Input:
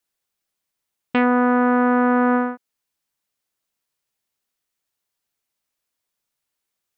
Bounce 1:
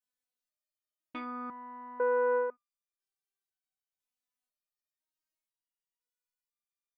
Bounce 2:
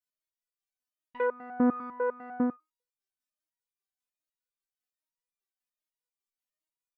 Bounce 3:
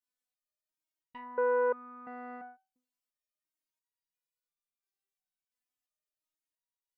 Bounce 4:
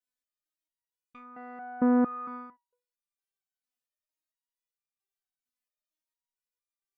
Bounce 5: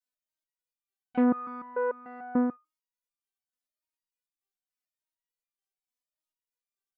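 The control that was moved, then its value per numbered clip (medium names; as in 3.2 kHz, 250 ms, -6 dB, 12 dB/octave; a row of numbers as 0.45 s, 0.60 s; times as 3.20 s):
resonator arpeggio, rate: 2 Hz, 10 Hz, 2.9 Hz, 4.4 Hz, 6.8 Hz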